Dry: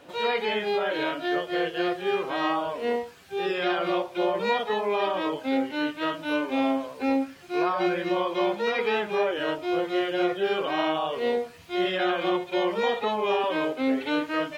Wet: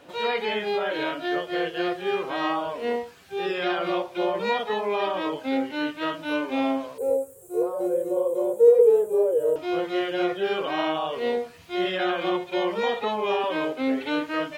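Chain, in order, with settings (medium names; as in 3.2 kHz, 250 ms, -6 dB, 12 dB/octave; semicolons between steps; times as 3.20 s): 6.98–9.56 s: FFT filter 130 Hz 0 dB, 190 Hz -13 dB, 280 Hz -16 dB, 480 Hz +15 dB, 690 Hz -9 dB, 980 Hz -11 dB, 2.1 kHz -28 dB, 5.2 kHz -21 dB, 7.9 kHz +13 dB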